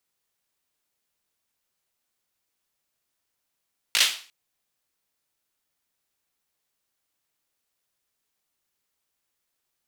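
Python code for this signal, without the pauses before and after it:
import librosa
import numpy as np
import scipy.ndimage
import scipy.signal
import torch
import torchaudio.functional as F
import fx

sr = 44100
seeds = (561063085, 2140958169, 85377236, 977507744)

y = fx.drum_clap(sr, seeds[0], length_s=0.35, bursts=4, spacing_ms=18, hz=3200.0, decay_s=0.4)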